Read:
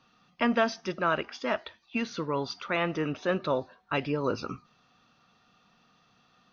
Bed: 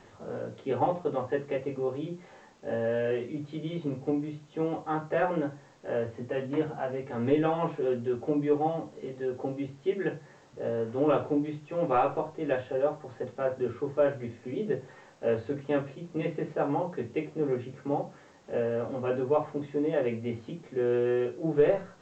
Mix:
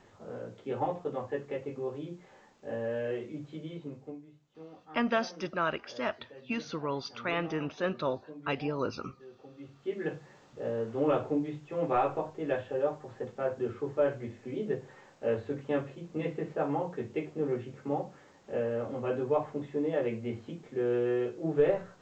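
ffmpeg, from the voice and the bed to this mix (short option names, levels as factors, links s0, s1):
-filter_complex "[0:a]adelay=4550,volume=0.668[s0];[1:a]volume=3.76,afade=t=out:st=3.52:d=0.71:silence=0.199526,afade=t=in:st=9.51:d=0.65:silence=0.149624[s1];[s0][s1]amix=inputs=2:normalize=0"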